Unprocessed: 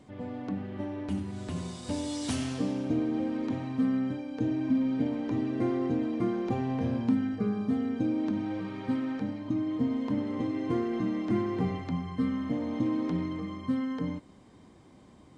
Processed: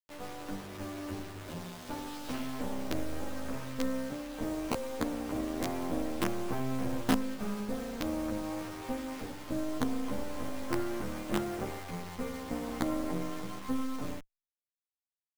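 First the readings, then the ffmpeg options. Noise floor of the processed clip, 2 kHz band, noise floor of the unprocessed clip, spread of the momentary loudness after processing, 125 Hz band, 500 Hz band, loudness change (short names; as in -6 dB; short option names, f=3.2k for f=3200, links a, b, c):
under -85 dBFS, +2.0 dB, -55 dBFS, 8 LU, -7.0 dB, -2.0 dB, -5.5 dB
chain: -filter_complex "[0:a]highpass=47,acrossover=split=150[a][b];[b]acontrast=47[c];[a][c]amix=inputs=2:normalize=0,lowpass=1.4k,crystalizer=i=5.5:c=0,equalizer=f=210:w=0.34:g=-4.5,acrusher=bits=4:dc=4:mix=0:aa=0.000001,asplit=2[d][e];[e]adelay=11.7,afreqshift=0.28[f];[d][f]amix=inputs=2:normalize=1"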